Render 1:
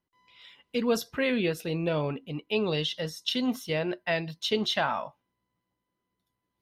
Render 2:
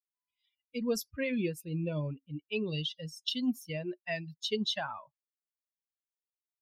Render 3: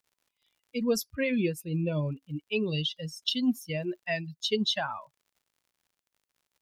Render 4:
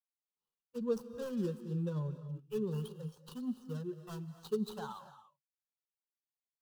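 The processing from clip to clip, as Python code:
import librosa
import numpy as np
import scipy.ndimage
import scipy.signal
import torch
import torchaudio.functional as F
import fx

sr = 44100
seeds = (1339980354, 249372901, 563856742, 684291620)

y1 = fx.bin_expand(x, sr, power=2.0)
y1 = fx.peak_eq(y1, sr, hz=1000.0, db=-9.0, octaves=2.1)
y1 = y1 * librosa.db_to_amplitude(1.0)
y2 = fx.dmg_crackle(y1, sr, seeds[0], per_s=80.0, level_db=-60.0)
y2 = y2 * librosa.db_to_amplitude(4.5)
y3 = scipy.ndimage.median_filter(y2, 25, mode='constant')
y3 = fx.fixed_phaser(y3, sr, hz=430.0, stages=8)
y3 = fx.rev_gated(y3, sr, seeds[1], gate_ms=310, shape='rising', drr_db=11.5)
y3 = y3 * librosa.db_to_amplitude(-5.0)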